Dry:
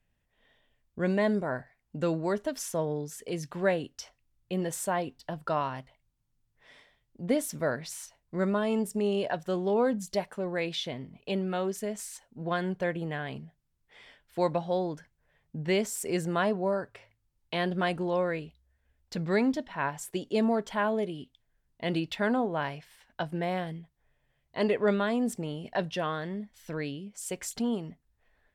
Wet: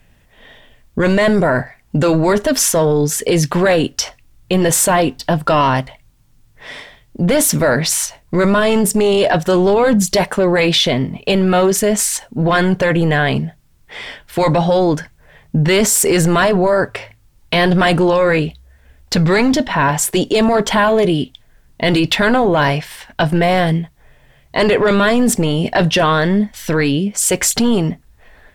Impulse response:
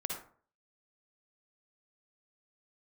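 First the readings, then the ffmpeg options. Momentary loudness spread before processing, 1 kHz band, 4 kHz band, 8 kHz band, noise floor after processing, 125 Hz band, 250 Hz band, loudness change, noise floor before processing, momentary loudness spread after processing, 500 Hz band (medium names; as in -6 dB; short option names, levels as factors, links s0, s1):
13 LU, +16.5 dB, +20.0 dB, +23.0 dB, -52 dBFS, +19.0 dB, +15.5 dB, +16.5 dB, -76 dBFS, 9 LU, +15.5 dB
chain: -af "apsyclip=42.2,volume=0.376"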